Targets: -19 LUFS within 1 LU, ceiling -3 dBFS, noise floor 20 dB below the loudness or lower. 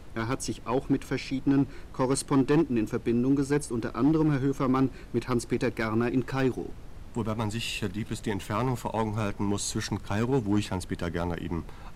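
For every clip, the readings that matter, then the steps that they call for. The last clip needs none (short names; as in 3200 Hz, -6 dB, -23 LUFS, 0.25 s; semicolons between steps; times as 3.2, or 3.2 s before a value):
clipped 1.0%; flat tops at -17.5 dBFS; noise floor -44 dBFS; noise floor target -49 dBFS; loudness -28.5 LUFS; peak -17.5 dBFS; loudness target -19.0 LUFS
-> clip repair -17.5 dBFS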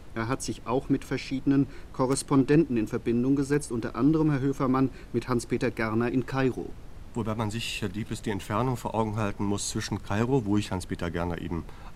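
clipped 0.0%; noise floor -44 dBFS; noise floor target -48 dBFS
-> noise print and reduce 6 dB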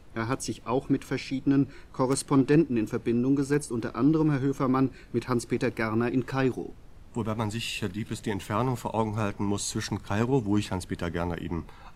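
noise floor -48 dBFS; loudness -28.0 LUFS; peak -10.0 dBFS; loudness target -19.0 LUFS
-> gain +9 dB; limiter -3 dBFS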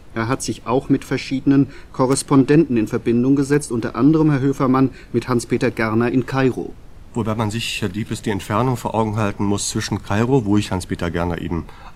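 loudness -19.0 LUFS; peak -3.0 dBFS; noise floor -39 dBFS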